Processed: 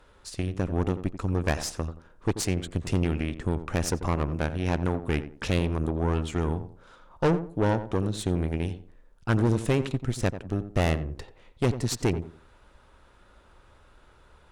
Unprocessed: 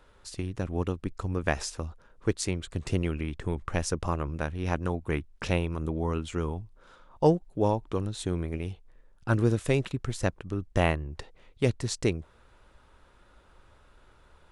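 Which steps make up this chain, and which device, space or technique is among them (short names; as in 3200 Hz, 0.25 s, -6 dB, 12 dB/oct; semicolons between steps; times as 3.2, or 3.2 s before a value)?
rockabilly slapback (tube stage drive 24 dB, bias 0.75; tape echo 88 ms, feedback 32%, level -8.5 dB, low-pass 1100 Hz); gain +6.5 dB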